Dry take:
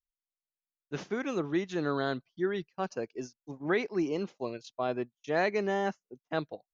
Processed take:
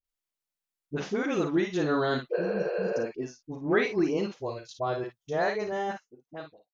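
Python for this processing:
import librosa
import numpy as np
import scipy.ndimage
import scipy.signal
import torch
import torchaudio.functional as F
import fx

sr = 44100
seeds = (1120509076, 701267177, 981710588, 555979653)

y = fx.fade_out_tail(x, sr, length_s=1.67)
y = fx.graphic_eq_15(y, sr, hz=(100, 250, 2500), db=(8, -12, -8), at=(4.3, 5.72))
y = fx.room_early_taps(y, sr, ms=(39, 53), db=(-11.0, -8.0))
y = fx.spec_repair(y, sr, seeds[0], start_s=2.33, length_s=0.63, low_hz=350.0, high_hz=4700.0, source='after')
y = fx.dispersion(y, sr, late='highs', ms=44.0, hz=770.0)
y = fx.high_shelf(y, sr, hz=4800.0, db=-7.0, at=(2.87, 3.72))
y = y * librosa.db_to_amplitude(3.5)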